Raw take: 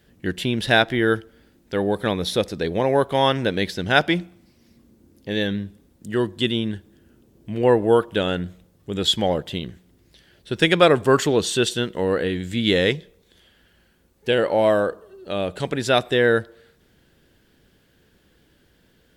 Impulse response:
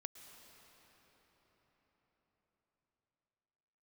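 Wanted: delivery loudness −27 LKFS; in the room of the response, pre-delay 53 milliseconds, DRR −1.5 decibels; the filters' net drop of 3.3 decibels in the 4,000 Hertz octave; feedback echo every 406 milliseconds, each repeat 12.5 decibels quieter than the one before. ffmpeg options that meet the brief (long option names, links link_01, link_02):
-filter_complex "[0:a]equalizer=frequency=4000:width_type=o:gain=-4,aecho=1:1:406|812|1218:0.237|0.0569|0.0137,asplit=2[link_01][link_02];[1:a]atrim=start_sample=2205,adelay=53[link_03];[link_02][link_03]afir=irnorm=-1:irlink=0,volume=6dB[link_04];[link_01][link_04]amix=inputs=2:normalize=0,volume=-8.5dB"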